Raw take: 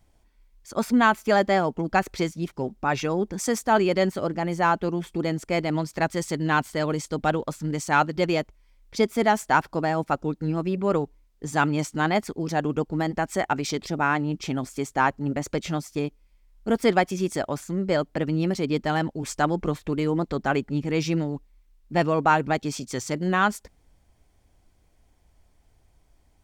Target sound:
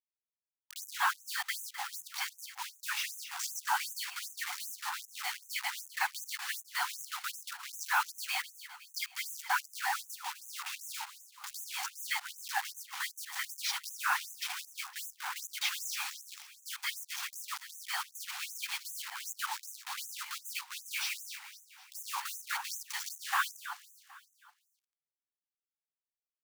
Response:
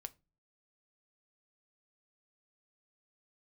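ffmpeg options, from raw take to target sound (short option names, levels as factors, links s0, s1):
-filter_complex "[0:a]asettb=1/sr,asplit=3[s0][s1][s2];[s0]atrim=end=15.614[s3];[s1]atrim=start=15.61:end=16.69,asetpts=PTS-STARTPTS,afade=t=in:d=0.004:c=qsin,afade=t=out:st=1.076:d=0.004:c=qsin,aeval=exprs='val(0)+0.5*0.0398*sgn(val(0))':c=same[s4];[s2]atrim=start=16.686[s5];[s3][s4]acrossfade=d=0.004:c1=hsin:c2=qsin[s6];[s6][s5]acrossfade=d=0.004:c1=qsin:c2=hsin,afftfilt=real='hypot(re,im)*cos(2*PI*random(0))':imag='hypot(re,im)*sin(2*PI*random(1))':win_size=512:overlap=0.75,equalizer=f=180:w=0.39:g=-5,acrossover=split=150|4900[s7][s8][s9];[s8]alimiter=level_in=1.06:limit=0.0631:level=0:latency=1:release=74,volume=0.944[s10];[s7][s10][s9]amix=inputs=3:normalize=0,acrossover=split=190 6500:gain=0.251 1 0.0794[s11][s12][s13];[s11][s12][s13]amix=inputs=3:normalize=0,acrusher=bits=6:mix=0:aa=0.000001,asplit=2[s14][s15];[s15]aecho=0:1:256|512|768|1024|1280:0.266|0.128|0.0613|0.0294|0.0141[s16];[s14][s16]amix=inputs=2:normalize=0,afftfilt=real='re*gte(b*sr/1024,710*pow(6100/710,0.5+0.5*sin(2*PI*2.6*pts/sr)))':imag='im*gte(b*sr/1024,710*pow(6100/710,0.5+0.5*sin(2*PI*2.6*pts/sr)))':win_size=1024:overlap=0.75,volume=2"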